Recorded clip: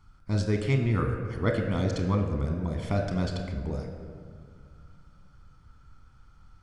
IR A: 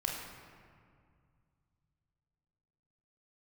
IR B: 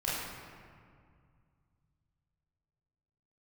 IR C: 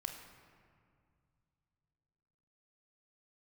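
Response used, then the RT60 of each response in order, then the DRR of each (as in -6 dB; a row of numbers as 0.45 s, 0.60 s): C; 2.1 s, 2.1 s, 2.2 s; -2.0 dB, -9.0 dB, 3.5 dB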